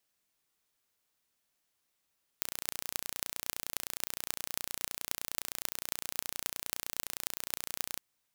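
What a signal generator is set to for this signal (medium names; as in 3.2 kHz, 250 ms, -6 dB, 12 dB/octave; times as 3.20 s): pulse train 29.7 per s, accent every 8, -3.5 dBFS 5.56 s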